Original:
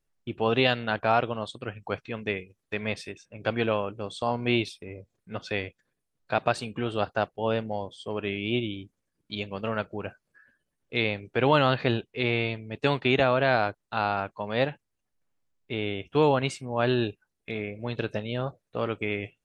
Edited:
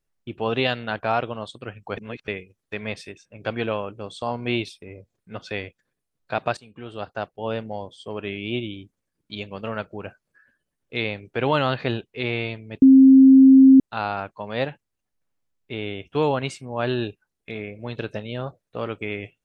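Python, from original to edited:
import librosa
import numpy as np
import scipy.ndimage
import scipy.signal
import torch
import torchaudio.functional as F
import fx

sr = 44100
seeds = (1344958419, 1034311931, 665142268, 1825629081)

y = fx.edit(x, sr, fx.reverse_span(start_s=1.97, length_s=0.31),
    fx.fade_in_from(start_s=6.57, length_s=1.38, curve='qsin', floor_db=-17.0),
    fx.bleep(start_s=12.82, length_s=0.98, hz=266.0, db=-7.0), tone=tone)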